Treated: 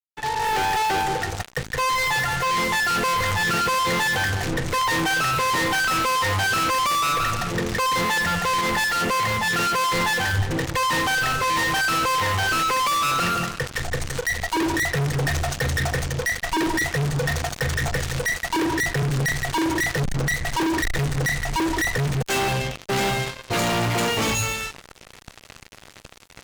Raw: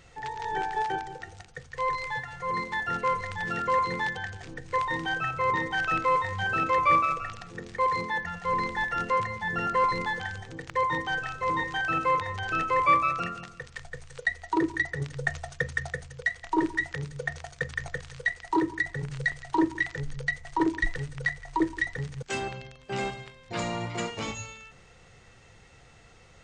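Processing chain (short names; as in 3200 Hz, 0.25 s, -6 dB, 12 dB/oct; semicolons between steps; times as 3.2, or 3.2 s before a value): opening faded in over 0.74 s; fuzz box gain 46 dB, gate -49 dBFS; 8.61–10.51 three-band expander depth 100%; gain -7.5 dB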